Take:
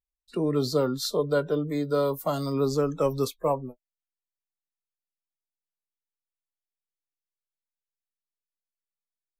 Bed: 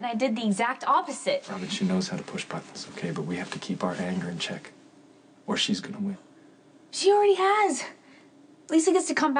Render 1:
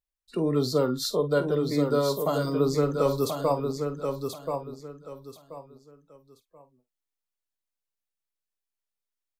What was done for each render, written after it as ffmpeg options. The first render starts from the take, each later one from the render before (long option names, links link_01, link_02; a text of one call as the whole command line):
ffmpeg -i in.wav -filter_complex "[0:a]asplit=2[link_01][link_02];[link_02]adelay=48,volume=-13dB[link_03];[link_01][link_03]amix=inputs=2:normalize=0,aecho=1:1:1032|2064|3096:0.531|0.138|0.0359" out.wav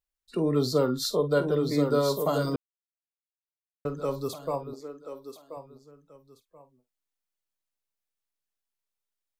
ffmpeg -i in.wav -filter_complex "[0:a]asettb=1/sr,asplit=3[link_01][link_02][link_03];[link_01]atrim=end=4.734[link_04];[link_02]atrim=start=4.73:end=5.57,asetpts=PTS-STARTPTS,afade=type=in:duration=0.004:curve=qsin,afade=type=out:start_time=0.836:duration=0.004:curve=qsin,lowshelf=frequency=220:width_type=q:width=1.5:gain=-9.5[link_05];[link_03]atrim=start=5.566[link_06];[link_04][link_05]acrossfade=duration=0.004:curve1=hsin:curve2=qsin[link_07];[link_07][link_06]acrossfade=duration=0.004:curve1=qsin:curve2=hsin,asplit=3[link_08][link_09][link_10];[link_08]atrim=end=2.56,asetpts=PTS-STARTPTS,afade=type=out:start_time=2.556:duration=0.004:curve=hsin[link_11];[link_09]atrim=start=2.56:end=3.85,asetpts=PTS-STARTPTS,volume=0[link_12];[link_10]atrim=start=3.85,asetpts=PTS-STARTPTS,afade=type=in:duration=0.004:curve=hsin[link_13];[link_11][link_12][link_13]concat=n=3:v=0:a=1" out.wav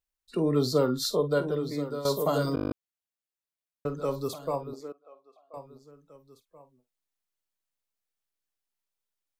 ffmpeg -i in.wav -filter_complex "[0:a]asettb=1/sr,asplit=3[link_01][link_02][link_03];[link_01]atrim=end=4.924[link_04];[link_02]atrim=start=4.92:end=5.54,asetpts=PTS-STARTPTS,afade=type=in:duration=0.004:curve=qsin,afade=type=out:start_time=0.616:duration=0.004:curve=qsin,asplit=3[link_05][link_06][link_07];[link_05]bandpass=frequency=730:width_type=q:width=8,volume=0dB[link_08];[link_06]bandpass=frequency=1090:width_type=q:width=8,volume=-6dB[link_09];[link_07]bandpass=frequency=2440:width_type=q:width=8,volume=-9dB[link_10];[link_08][link_09][link_10]amix=inputs=3:normalize=0[link_11];[link_03]atrim=start=5.536[link_12];[link_04][link_11]acrossfade=duration=0.004:curve1=hsin:curve2=qsin[link_13];[link_13][link_12]acrossfade=duration=0.004:curve1=qsin:curve2=hsin,asplit=11[link_14][link_15][link_16][link_17][link_18][link_19][link_20][link_21][link_22][link_23][link_24];[link_14]atrim=end=2.05,asetpts=PTS-STARTPTS,afade=type=out:start_time=1.13:duration=0.92:silence=0.223872[link_25];[link_15]atrim=start=2.05:end=2.572,asetpts=PTS-STARTPTS,afade=type=in:duration=0.004:curve=hsin:silence=0.223872[link_26];[link_16]atrim=start=2.548:end=2.572[link_27];[link_17]atrim=start=2.548:end=2.572[link_28];[link_18]atrim=start=2.548:end=2.572[link_29];[link_19]atrim=start=2.548:end=2.572[link_30];[link_20]atrim=start=2.548:end=2.572[link_31];[link_21]atrim=start=2.548:end=2.572[link_32];[link_22]atrim=start=2.548:end=2.572[link_33];[link_23]atrim=start=2.548:end=2.572[link_34];[link_24]atrim=start=2.728[link_35];[link_25][link_26]concat=n=2:v=0:a=1[link_36];[link_36][link_27]acrossfade=duration=0.004:curve1=hsin:curve2=hsin[link_37];[link_37][link_28]acrossfade=duration=0.004:curve1=hsin:curve2=hsin[link_38];[link_38][link_29]acrossfade=duration=0.004:curve1=hsin:curve2=hsin[link_39];[link_39][link_30]acrossfade=duration=0.004:curve1=hsin:curve2=hsin[link_40];[link_40][link_31]acrossfade=duration=0.004:curve1=hsin:curve2=hsin[link_41];[link_41][link_32]acrossfade=duration=0.004:curve1=hsin:curve2=hsin[link_42];[link_42][link_33]acrossfade=duration=0.004:curve1=hsin:curve2=hsin[link_43];[link_43][link_34]acrossfade=duration=0.004:curve1=hsin:curve2=hsin[link_44];[link_44][link_35]acrossfade=duration=0.004:curve1=hsin:curve2=hsin" out.wav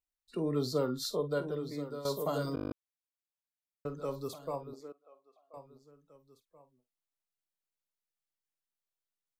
ffmpeg -i in.wav -af "volume=-7dB" out.wav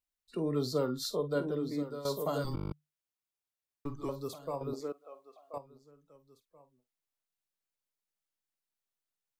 ffmpeg -i in.wav -filter_complex "[0:a]asettb=1/sr,asplit=3[link_01][link_02][link_03];[link_01]atrim=end=1.354[link_04];[link_02]atrim=start=1.35:end=1.83,asetpts=PTS-STARTPTS,afade=type=in:duration=0.004:curve=qsin,afade=type=out:start_time=0.476:duration=0.004:curve=qsin,equalizer=frequency=260:width_type=o:width=0.77:gain=7[link_05];[link_03]atrim=start=1.826[link_06];[link_04][link_05]acrossfade=duration=0.004:curve1=hsin:curve2=qsin[link_07];[link_07][link_06]acrossfade=duration=0.004:curve1=qsin:curve2=hsin,asettb=1/sr,asplit=3[link_08][link_09][link_10];[link_08]atrim=end=2.444[link_11];[link_09]atrim=start=2.44:end=4.09,asetpts=PTS-STARTPTS,afade=type=in:duration=0.004:curve=qsin,afade=type=out:start_time=1.646:duration=0.004:curve=qsin,afreqshift=-150[link_12];[link_10]atrim=start=4.086[link_13];[link_11][link_12]acrossfade=duration=0.004:curve1=hsin:curve2=qsin[link_14];[link_14][link_13]acrossfade=duration=0.004:curve1=qsin:curve2=hsin,asplit=3[link_15][link_16][link_17];[link_15]atrim=end=4.612[link_18];[link_16]atrim=start=4.608:end=5.582,asetpts=PTS-STARTPTS,volume=9dB[link_19];[link_17]atrim=start=5.578[link_20];[link_18][link_19]acrossfade=duration=0.004:curve1=hsin:curve2=hsin[link_21];[link_21][link_20]acrossfade=duration=0.004:curve1=hsin:curve2=hsin" out.wav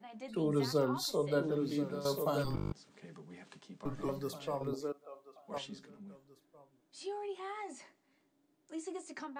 ffmpeg -i in.wav -i bed.wav -filter_complex "[1:a]volume=-21dB[link_01];[0:a][link_01]amix=inputs=2:normalize=0" out.wav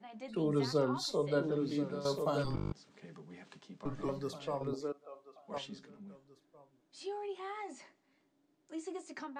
ffmpeg -i in.wav -af "lowpass=7300" out.wav